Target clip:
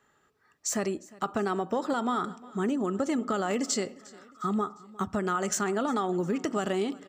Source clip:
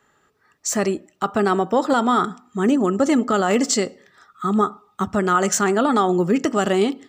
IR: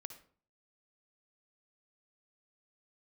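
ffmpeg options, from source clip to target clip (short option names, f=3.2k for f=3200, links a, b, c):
-filter_complex "[0:a]acompressor=threshold=-19dB:ratio=6,asplit=2[a][b];[b]aecho=0:1:355|710|1065:0.0794|0.0397|0.0199[c];[a][c]amix=inputs=2:normalize=0,volume=-6dB"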